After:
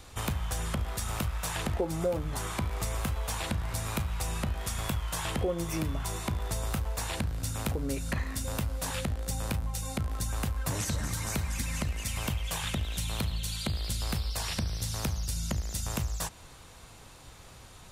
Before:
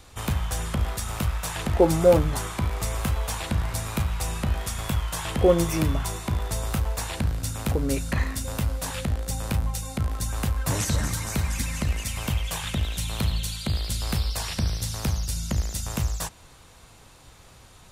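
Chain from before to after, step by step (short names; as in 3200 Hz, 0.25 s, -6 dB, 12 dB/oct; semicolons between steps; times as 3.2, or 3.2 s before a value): compressor 4:1, threshold -29 dBFS, peak gain reduction 14.5 dB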